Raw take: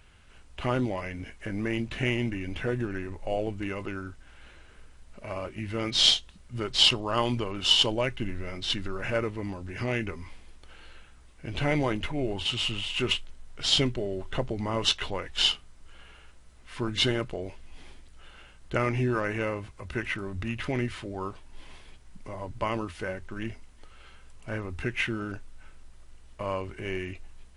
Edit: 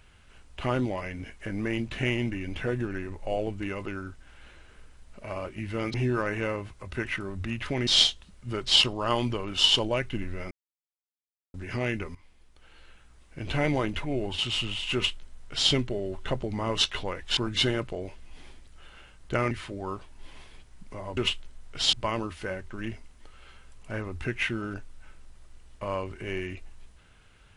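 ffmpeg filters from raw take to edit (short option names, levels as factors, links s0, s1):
-filter_complex "[0:a]asplit=10[s0][s1][s2][s3][s4][s5][s6][s7][s8][s9];[s0]atrim=end=5.942[s10];[s1]atrim=start=18.918:end=20.852[s11];[s2]atrim=start=5.938:end=8.58,asetpts=PTS-STARTPTS,afade=t=out:st=2.638:d=0.004:c=hsin[s12];[s3]atrim=start=8.58:end=9.61,asetpts=PTS-STARTPTS,volume=0[s13];[s4]atrim=start=9.61:end=10.22,asetpts=PTS-STARTPTS,afade=t=in:d=0.004:c=hsin,afade=t=out:st=0.606:d=0.004:c=hsin:silence=0.188365[s14];[s5]atrim=start=10.22:end=15.442,asetpts=PTS-STARTPTS,afade=t=in:d=1.26:silence=0.188365[s15];[s6]atrim=start=16.778:end=18.922[s16];[s7]atrim=start=20.848:end=22.512[s17];[s8]atrim=start=13.008:end=13.772[s18];[s9]atrim=start=22.508[s19];[s10][s11]acrossfade=d=0.004:c1=hsin:c2=hsin[s20];[s12][s13][s14][s15]concat=n=4:v=0:a=1[s21];[s20][s21]acrossfade=d=0.004:c1=hsin:c2=hsin[s22];[s22][s16]acrossfade=d=0.004:c1=hsin:c2=hsin[s23];[s23][s17]acrossfade=d=0.004:c1=hsin:c2=hsin[s24];[s24][s18]acrossfade=d=0.004:c1=hsin:c2=hsin[s25];[s25][s19]acrossfade=d=0.004:c1=hsin:c2=hsin"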